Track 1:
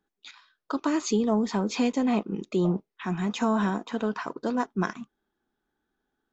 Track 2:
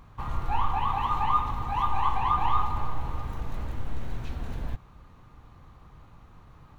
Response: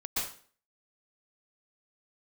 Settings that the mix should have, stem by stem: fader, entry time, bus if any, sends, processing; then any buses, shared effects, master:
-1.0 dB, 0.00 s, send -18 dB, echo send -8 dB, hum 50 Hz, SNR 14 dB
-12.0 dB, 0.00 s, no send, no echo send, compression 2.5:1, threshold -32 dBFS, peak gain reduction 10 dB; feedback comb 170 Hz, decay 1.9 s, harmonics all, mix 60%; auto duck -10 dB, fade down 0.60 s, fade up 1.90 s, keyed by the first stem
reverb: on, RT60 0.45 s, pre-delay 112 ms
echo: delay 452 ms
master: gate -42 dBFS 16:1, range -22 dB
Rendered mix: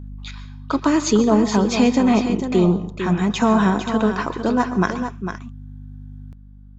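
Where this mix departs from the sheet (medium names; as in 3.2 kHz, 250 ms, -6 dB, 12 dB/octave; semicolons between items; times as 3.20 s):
stem 1 -1.0 dB -> +7.5 dB; master: missing gate -42 dBFS 16:1, range -22 dB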